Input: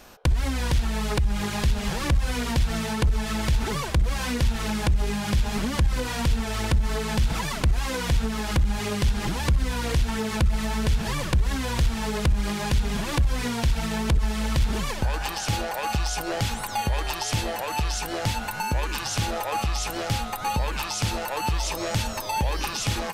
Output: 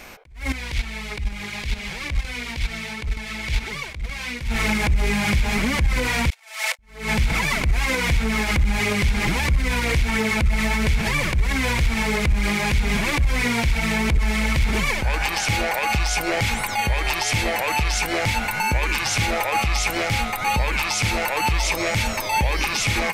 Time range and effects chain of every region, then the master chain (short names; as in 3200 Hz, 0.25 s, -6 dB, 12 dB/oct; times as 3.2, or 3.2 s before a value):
0.52–4.41 gate -21 dBFS, range -13 dB + dynamic EQ 3700 Hz, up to +7 dB, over -54 dBFS, Q 0.7
6.3–6.79 steep high-pass 530 Hz 72 dB/oct + high shelf 3300 Hz +8.5 dB + gate -32 dBFS, range -31 dB
whole clip: bell 2200 Hz +14 dB 0.36 oct; limiter -17.5 dBFS; attack slew limiter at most 130 dB/s; gain +5.5 dB